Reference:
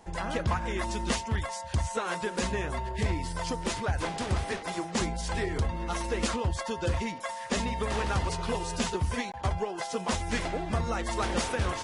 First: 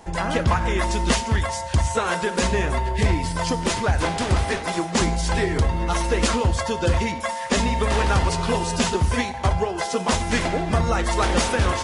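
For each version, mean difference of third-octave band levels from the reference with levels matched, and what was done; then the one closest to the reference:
1.0 dB: reverb whose tail is shaped and stops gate 320 ms falling, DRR 11.5 dB
level +8.5 dB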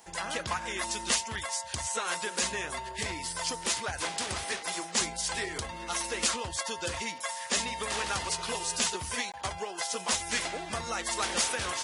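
6.0 dB: spectral tilt +3.5 dB per octave
level −1.5 dB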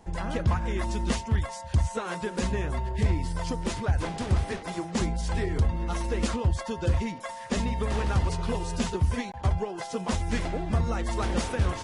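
2.5 dB: low-shelf EQ 310 Hz +8.5 dB
level −2.5 dB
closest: first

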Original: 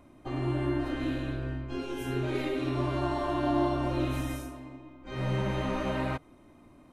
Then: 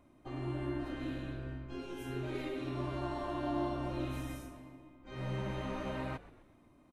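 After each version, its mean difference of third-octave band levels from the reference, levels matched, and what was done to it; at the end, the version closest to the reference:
1.0 dB: echo with shifted repeats 128 ms, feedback 50%, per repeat −79 Hz, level −17.5 dB
level −8 dB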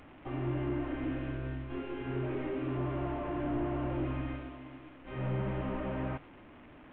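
6.0 dB: linear delta modulator 16 kbit/s, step −44 dBFS
level −3.5 dB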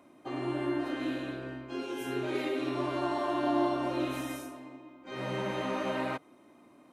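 2.5 dB: high-pass filter 240 Hz 12 dB per octave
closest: first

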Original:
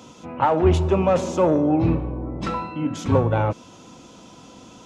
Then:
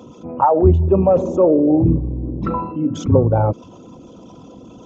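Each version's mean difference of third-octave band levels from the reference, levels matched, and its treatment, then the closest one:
7.0 dB: spectral envelope exaggerated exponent 2
level +5 dB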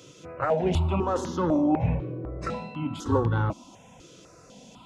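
3.5 dB: step-sequenced phaser 4 Hz 230–2,400 Hz
level −1.5 dB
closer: second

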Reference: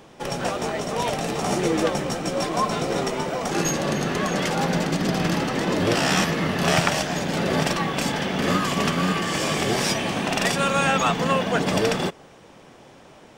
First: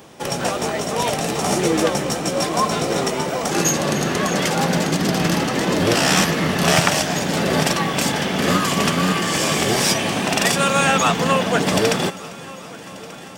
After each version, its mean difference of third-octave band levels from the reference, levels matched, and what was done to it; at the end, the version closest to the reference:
2.5 dB: high-pass filter 52 Hz
high-shelf EQ 7,600 Hz +11 dB
on a send: echo machine with several playback heads 395 ms, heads first and third, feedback 65%, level −22 dB
on the sum: highs frequency-modulated by the lows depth 0.1 ms
level +3.5 dB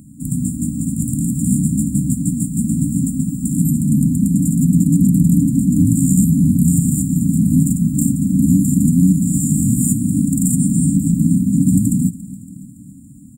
24.0 dB: high-pass filter 42 Hz 24 dB per octave
brick-wall band-stop 300–7,000 Hz
repeating echo 281 ms, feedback 58%, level −18.5 dB
boost into a limiter +16.5 dB
level −3 dB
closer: first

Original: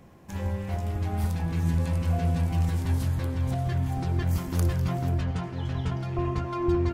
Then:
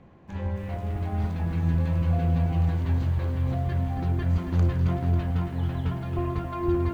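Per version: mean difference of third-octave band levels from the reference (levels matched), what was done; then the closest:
4.0 dB: high-frequency loss of the air 190 metres
notch filter 5,300 Hz, Q 8.4
feedback echo at a low word length 273 ms, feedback 55%, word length 9 bits, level −8.5 dB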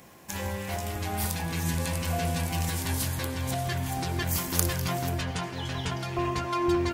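8.0 dB: spectral tilt +3 dB per octave
notch filter 1,300 Hz, Q 23
level +4.5 dB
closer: first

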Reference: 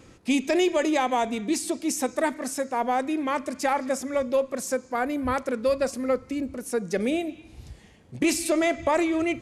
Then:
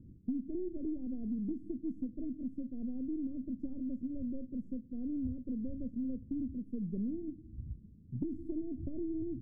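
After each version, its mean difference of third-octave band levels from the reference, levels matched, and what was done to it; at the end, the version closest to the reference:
17.0 dB: gain on one half-wave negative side −3 dB
inverse Chebyshev low-pass filter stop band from 870 Hz, stop band 60 dB
downward compressor 5 to 1, threshold −35 dBFS, peak gain reduction 10 dB
level +2 dB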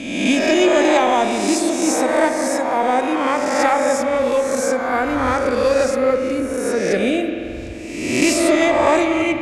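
7.0 dB: peak hold with a rise ahead of every peak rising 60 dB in 1.10 s
low-pass filter 9,200 Hz 12 dB per octave
spring reverb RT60 3 s, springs 44 ms, chirp 20 ms, DRR 6 dB
level +4.5 dB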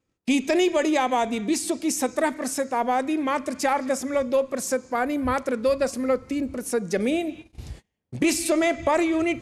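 1.5 dB: in parallel at 0 dB: downward compressor, threshold −36 dBFS, peak gain reduction 16.5 dB
on the sum: noise gate −39 dBFS, range −33 dB
floating-point word with a short mantissa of 8 bits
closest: third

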